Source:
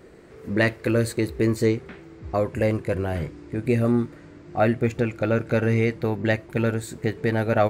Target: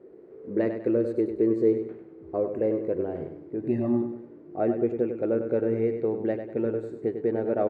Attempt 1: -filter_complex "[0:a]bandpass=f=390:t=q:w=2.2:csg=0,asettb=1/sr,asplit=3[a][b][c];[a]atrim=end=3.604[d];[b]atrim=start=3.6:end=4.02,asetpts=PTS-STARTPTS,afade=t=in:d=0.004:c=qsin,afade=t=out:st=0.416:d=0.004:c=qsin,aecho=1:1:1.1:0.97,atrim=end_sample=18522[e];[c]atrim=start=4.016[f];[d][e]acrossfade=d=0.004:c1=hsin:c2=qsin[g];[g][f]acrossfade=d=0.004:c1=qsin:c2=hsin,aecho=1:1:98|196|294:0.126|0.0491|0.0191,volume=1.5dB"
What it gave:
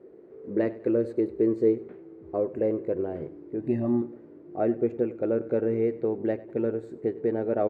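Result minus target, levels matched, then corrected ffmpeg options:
echo-to-direct -10 dB
-filter_complex "[0:a]bandpass=f=390:t=q:w=2.2:csg=0,asettb=1/sr,asplit=3[a][b][c];[a]atrim=end=3.604[d];[b]atrim=start=3.6:end=4.02,asetpts=PTS-STARTPTS,afade=t=in:d=0.004:c=qsin,afade=t=out:st=0.416:d=0.004:c=qsin,aecho=1:1:1.1:0.97,atrim=end_sample=18522[e];[c]atrim=start=4.016[f];[d][e]acrossfade=d=0.004:c1=hsin:c2=qsin[g];[g][f]acrossfade=d=0.004:c1=qsin:c2=hsin,aecho=1:1:98|196|294|392:0.398|0.155|0.0606|0.0236,volume=1.5dB"

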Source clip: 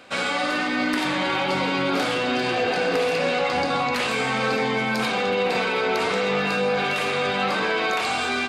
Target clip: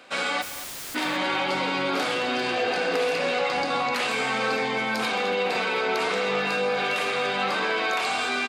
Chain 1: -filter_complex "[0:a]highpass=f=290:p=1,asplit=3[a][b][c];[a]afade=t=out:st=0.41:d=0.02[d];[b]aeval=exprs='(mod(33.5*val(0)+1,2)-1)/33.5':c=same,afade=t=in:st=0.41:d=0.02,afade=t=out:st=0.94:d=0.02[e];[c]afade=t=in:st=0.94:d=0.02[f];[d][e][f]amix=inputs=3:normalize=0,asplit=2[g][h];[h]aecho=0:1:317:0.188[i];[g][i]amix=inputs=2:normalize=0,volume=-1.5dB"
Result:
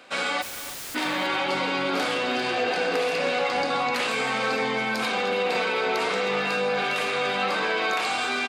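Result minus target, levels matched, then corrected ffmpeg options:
echo 98 ms late
-filter_complex "[0:a]highpass=f=290:p=1,asplit=3[a][b][c];[a]afade=t=out:st=0.41:d=0.02[d];[b]aeval=exprs='(mod(33.5*val(0)+1,2)-1)/33.5':c=same,afade=t=in:st=0.41:d=0.02,afade=t=out:st=0.94:d=0.02[e];[c]afade=t=in:st=0.94:d=0.02[f];[d][e][f]amix=inputs=3:normalize=0,asplit=2[g][h];[h]aecho=0:1:219:0.188[i];[g][i]amix=inputs=2:normalize=0,volume=-1.5dB"

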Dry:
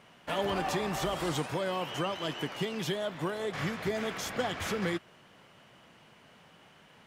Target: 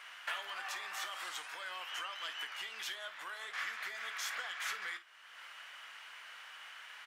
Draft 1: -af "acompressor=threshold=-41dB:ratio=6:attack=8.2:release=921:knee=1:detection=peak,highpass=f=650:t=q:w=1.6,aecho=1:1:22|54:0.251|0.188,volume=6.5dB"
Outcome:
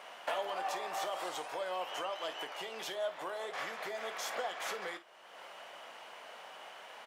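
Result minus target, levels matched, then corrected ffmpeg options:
500 Hz band +15.5 dB
-af "acompressor=threshold=-41dB:ratio=6:attack=8.2:release=921:knee=1:detection=peak,highpass=f=1.5k:t=q:w=1.6,aecho=1:1:22|54:0.251|0.188,volume=6.5dB"

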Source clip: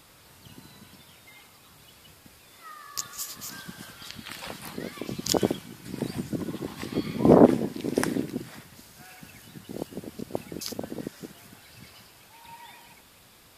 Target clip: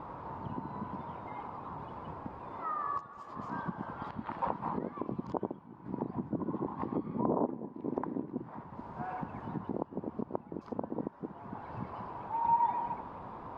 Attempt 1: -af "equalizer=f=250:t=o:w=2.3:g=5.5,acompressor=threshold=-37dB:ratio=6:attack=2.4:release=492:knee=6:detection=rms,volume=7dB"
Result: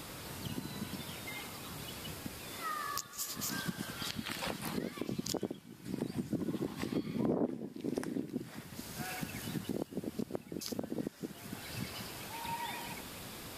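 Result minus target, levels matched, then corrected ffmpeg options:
1000 Hz band -8.5 dB
-af "equalizer=f=250:t=o:w=2.3:g=5.5,acompressor=threshold=-37dB:ratio=6:attack=2.4:release=492:knee=6:detection=rms,lowpass=f=970:t=q:w=5,volume=7dB"

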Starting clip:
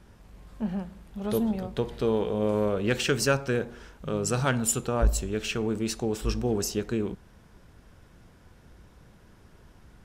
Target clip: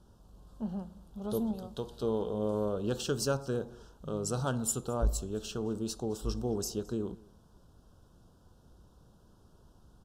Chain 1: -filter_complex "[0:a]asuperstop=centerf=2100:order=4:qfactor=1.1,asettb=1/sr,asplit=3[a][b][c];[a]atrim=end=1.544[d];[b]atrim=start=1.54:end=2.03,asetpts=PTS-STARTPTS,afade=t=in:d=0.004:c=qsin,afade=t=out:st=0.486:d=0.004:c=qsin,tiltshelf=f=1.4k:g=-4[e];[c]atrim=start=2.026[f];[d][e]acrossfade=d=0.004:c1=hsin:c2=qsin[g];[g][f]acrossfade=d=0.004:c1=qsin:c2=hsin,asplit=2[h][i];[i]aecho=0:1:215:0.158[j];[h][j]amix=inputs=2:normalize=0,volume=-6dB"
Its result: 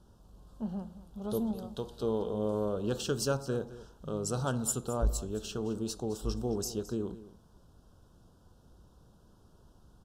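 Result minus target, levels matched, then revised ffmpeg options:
echo-to-direct +8 dB
-filter_complex "[0:a]asuperstop=centerf=2100:order=4:qfactor=1.1,asettb=1/sr,asplit=3[a][b][c];[a]atrim=end=1.544[d];[b]atrim=start=1.54:end=2.03,asetpts=PTS-STARTPTS,afade=t=in:d=0.004:c=qsin,afade=t=out:st=0.486:d=0.004:c=qsin,tiltshelf=f=1.4k:g=-4[e];[c]atrim=start=2.026[f];[d][e]acrossfade=d=0.004:c1=hsin:c2=qsin[g];[g][f]acrossfade=d=0.004:c1=qsin:c2=hsin,asplit=2[h][i];[i]aecho=0:1:215:0.0631[j];[h][j]amix=inputs=2:normalize=0,volume=-6dB"

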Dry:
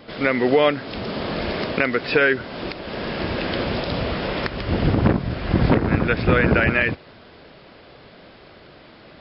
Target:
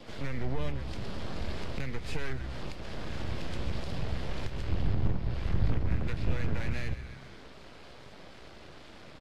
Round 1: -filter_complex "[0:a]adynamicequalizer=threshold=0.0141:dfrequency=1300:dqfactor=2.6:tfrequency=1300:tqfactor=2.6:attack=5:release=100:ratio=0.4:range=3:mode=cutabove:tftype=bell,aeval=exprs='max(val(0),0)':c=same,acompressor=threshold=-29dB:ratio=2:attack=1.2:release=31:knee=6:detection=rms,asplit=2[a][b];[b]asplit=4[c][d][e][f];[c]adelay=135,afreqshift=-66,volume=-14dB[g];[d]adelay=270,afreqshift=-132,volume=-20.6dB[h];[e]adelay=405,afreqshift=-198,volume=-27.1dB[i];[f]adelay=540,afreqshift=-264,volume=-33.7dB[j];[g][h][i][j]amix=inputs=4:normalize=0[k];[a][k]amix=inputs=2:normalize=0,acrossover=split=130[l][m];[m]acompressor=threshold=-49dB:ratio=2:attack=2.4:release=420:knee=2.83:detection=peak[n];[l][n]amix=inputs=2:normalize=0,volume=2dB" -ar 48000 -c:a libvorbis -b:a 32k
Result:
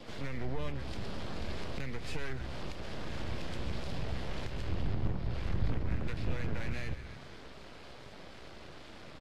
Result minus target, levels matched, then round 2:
compressor: peak gain reduction +5 dB
-filter_complex "[0:a]adynamicequalizer=threshold=0.0141:dfrequency=1300:dqfactor=2.6:tfrequency=1300:tqfactor=2.6:attack=5:release=100:ratio=0.4:range=3:mode=cutabove:tftype=bell,aeval=exprs='max(val(0),0)':c=same,acompressor=threshold=-19dB:ratio=2:attack=1.2:release=31:knee=6:detection=rms,asplit=2[a][b];[b]asplit=4[c][d][e][f];[c]adelay=135,afreqshift=-66,volume=-14dB[g];[d]adelay=270,afreqshift=-132,volume=-20.6dB[h];[e]adelay=405,afreqshift=-198,volume=-27.1dB[i];[f]adelay=540,afreqshift=-264,volume=-33.7dB[j];[g][h][i][j]amix=inputs=4:normalize=0[k];[a][k]amix=inputs=2:normalize=0,acrossover=split=130[l][m];[m]acompressor=threshold=-49dB:ratio=2:attack=2.4:release=420:knee=2.83:detection=peak[n];[l][n]amix=inputs=2:normalize=0,volume=2dB" -ar 48000 -c:a libvorbis -b:a 32k

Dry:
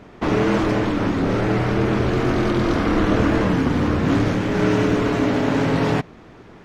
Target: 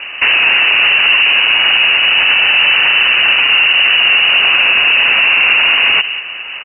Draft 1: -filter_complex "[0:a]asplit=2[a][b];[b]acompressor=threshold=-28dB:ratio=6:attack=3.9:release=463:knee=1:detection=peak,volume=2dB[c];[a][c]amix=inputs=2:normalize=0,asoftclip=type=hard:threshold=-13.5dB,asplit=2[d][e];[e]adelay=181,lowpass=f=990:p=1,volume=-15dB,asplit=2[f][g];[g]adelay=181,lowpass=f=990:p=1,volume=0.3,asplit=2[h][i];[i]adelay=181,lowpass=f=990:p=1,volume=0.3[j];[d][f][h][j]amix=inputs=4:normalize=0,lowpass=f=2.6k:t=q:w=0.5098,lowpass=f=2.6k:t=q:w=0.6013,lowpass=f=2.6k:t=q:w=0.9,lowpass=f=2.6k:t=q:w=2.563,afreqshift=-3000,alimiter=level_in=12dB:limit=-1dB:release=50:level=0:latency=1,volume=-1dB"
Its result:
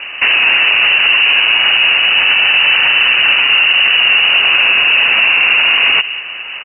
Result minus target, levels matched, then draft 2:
compressor: peak gain reduction +8.5 dB
-filter_complex "[0:a]asplit=2[a][b];[b]acompressor=threshold=-18dB:ratio=6:attack=3.9:release=463:knee=1:detection=peak,volume=2dB[c];[a][c]amix=inputs=2:normalize=0,asoftclip=type=hard:threshold=-13.5dB,asplit=2[d][e];[e]adelay=181,lowpass=f=990:p=1,volume=-15dB,asplit=2[f][g];[g]adelay=181,lowpass=f=990:p=1,volume=0.3,asplit=2[h][i];[i]adelay=181,lowpass=f=990:p=1,volume=0.3[j];[d][f][h][j]amix=inputs=4:normalize=0,lowpass=f=2.6k:t=q:w=0.5098,lowpass=f=2.6k:t=q:w=0.6013,lowpass=f=2.6k:t=q:w=0.9,lowpass=f=2.6k:t=q:w=2.563,afreqshift=-3000,alimiter=level_in=12dB:limit=-1dB:release=50:level=0:latency=1,volume=-1dB"

